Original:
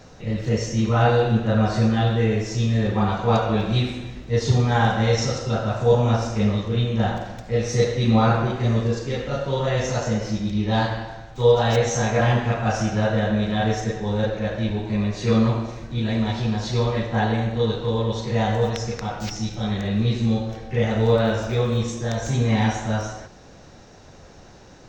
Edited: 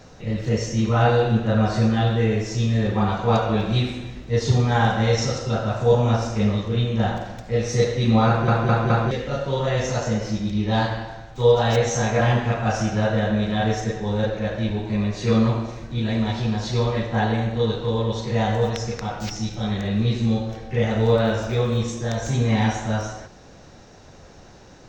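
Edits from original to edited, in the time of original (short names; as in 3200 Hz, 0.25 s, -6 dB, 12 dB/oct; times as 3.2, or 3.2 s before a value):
8.27 stutter in place 0.21 s, 4 plays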